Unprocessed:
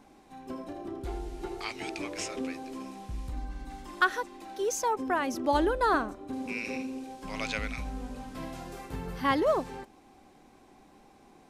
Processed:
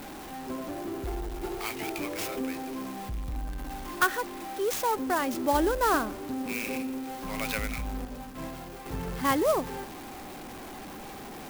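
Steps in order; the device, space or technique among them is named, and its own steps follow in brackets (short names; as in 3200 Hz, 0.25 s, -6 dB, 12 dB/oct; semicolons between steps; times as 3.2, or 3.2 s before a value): early CD player with a faulty converter (zero-crossing step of -37 dBFS; clock jitter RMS 0.037 ms); 8.05–8.86 expander -32 dBFS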